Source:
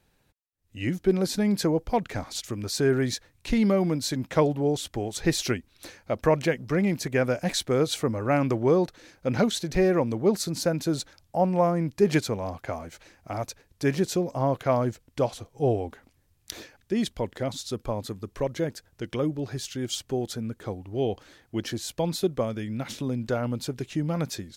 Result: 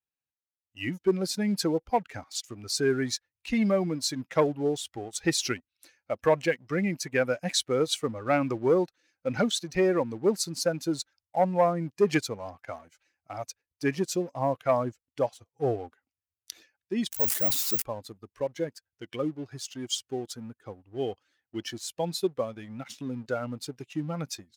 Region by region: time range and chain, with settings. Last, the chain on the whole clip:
17.12–17.82 switching spikes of -30 dBFS + careless resampling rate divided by 2×, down none, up zero stuff + sustainer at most 61 dB/s
whole clip: per-bin expansion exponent 1.5; sample leveller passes 1; HPF 320 Hz 6 dB/oct

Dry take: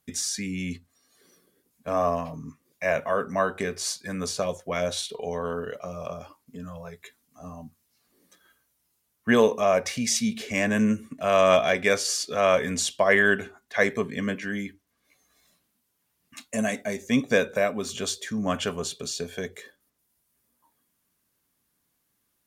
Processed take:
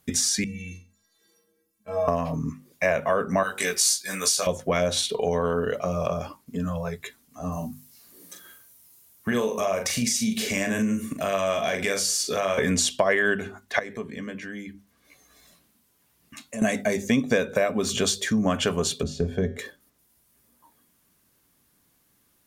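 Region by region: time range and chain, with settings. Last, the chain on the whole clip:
0.44–2.08 metallic resonator 97 Hz, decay 0.73 s, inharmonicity 0.03 + flutter echo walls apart 7.6 m, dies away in 0.33 s
3.43–4.47 tilt +4.5 dB/oct + detuned doubles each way 14 cents
7.52–12.58 high shelf 5800 Hz +11.5 dB + compressor 3:1, threshold -34 dBFS + doubler 41 ms -6 dB
13.79–16.62 compressor 2:1, threshold -53 dBFS + doubler 14 ms -14 dB
19.03–19.59 tilt -4 dB/oct + notch 2400 Hz, Q 25 + resonator 79 Hz, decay 0.5 s, harmonics odd
whole clip: low shelf 400 Hz +3.5 dB; notches 50/100/150/200/250 Hz; compressor 4:1, threshold -28 dBFS; gain +8 dB

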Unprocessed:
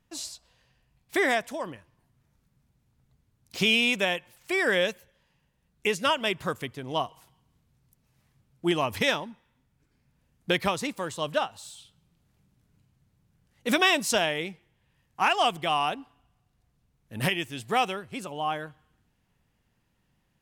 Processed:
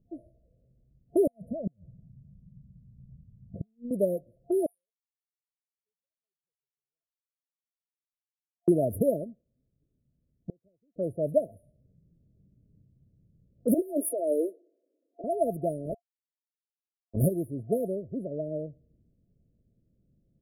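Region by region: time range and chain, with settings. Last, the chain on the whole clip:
1.27–3.91 compressor 12:1, threshold -32 dBFS + resonant low shelf 240 Hz +9 dB, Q 3 + flipped gate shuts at -24 dBFS, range -39 dB
4.66–8.68 elliptic high-pass 2100 Hz, stop band 70 dB + air absorption 66 m
9.24–10.96 G.711 law mismatch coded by A + flipped gate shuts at -28 dBFS, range -40 dB
13.74–15.24 steep high-pass 280 Hz 72 dB/oct + negative-ratio compressor -29 dBFS
15.85–17.24 bell 76 Hz +11.5 dB 1.3 oct + sample gate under -30.5 dBFS
whole clip: FFT band-reject 690–9500 Hz; low-pass opened by the level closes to 440 Hz, open at -28.5 dBFS; gain +4 dB

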